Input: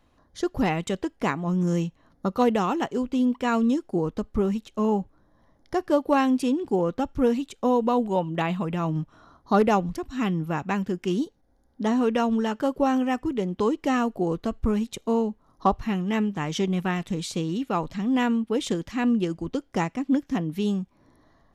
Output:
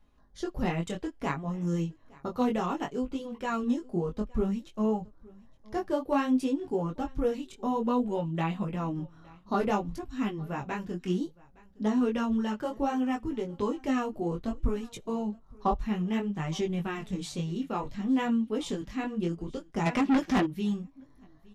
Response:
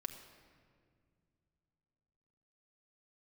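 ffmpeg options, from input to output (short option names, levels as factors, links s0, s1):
-filter_complex "[0:a]flanger=delay=18:depth=5.7:speed=0.6,lowshelf=f=79:g=11.5,flanger=delay=4.8:depth=3.4:regen=-35:speed=0.25:shape=sinusoidal,aecho=1:1:865:0.0631,asplit=3[s0][s1][s2];[s0]afade=t=out:st=19.85:d=0.02[s3];[s1]asplit=2[s4][s5];[s5]highpass=f=720:p=1,volume=28.2,asoftclip=type=tanh:threshold=0.158[s6];[s4][s6]amix=inputs=2:normalize=0,lowpass=f=3500:p=1,volume=0.501,afade=t=in:st=19.85:d=0.02,afade=t=out:st=20.45:d=0.02[s7];[s2]afade=t=in:st=20.45:d=0.02[s8];[s3][s7][s8]amix=inputs=3:normalize=0"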